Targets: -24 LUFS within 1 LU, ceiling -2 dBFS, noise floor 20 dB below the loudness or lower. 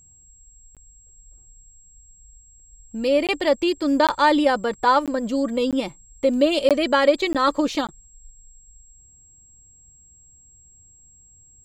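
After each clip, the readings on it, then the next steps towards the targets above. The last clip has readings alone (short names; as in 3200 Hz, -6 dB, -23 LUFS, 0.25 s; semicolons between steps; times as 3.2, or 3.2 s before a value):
dropouts 8; longest dropout 17 ms; steady tone 7600 Hz; tone level -50 dBFS; loudness -20.5 LUFS; peak -4.5 dBFS; loudness target -24.0 LUFS
-> interpolate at 0.75/3.27/4.07/5.06/5.71/6.69/7.33/7.87, 17 ms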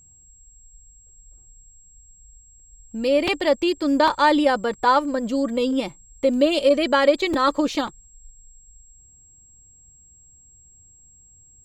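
dropouts 0; steady tone 7600 Hz; tone level -50 dBFS
-> notch 7600 Hz, Q 30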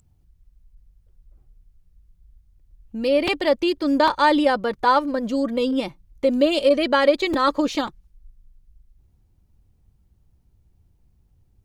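steady tone none; loudness -20.5 LUFS; peak -4.5 dBFS; loudness target -24.0 LUFS
-> gain -3.5 dB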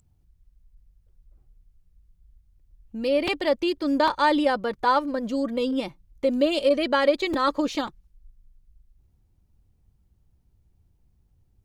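loudness -24.0 LUFS; peak -8.0 dBFS; noise floor -65 dBFS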